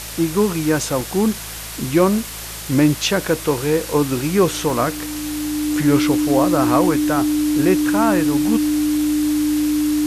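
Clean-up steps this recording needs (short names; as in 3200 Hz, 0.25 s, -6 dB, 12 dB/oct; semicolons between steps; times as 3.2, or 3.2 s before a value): de-hum 54.7 Hz, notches 3; notch 300 Hz, Q 30; interpolate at 1.01/2.65/4.7, 2 ms; noise print and reduce 30 dB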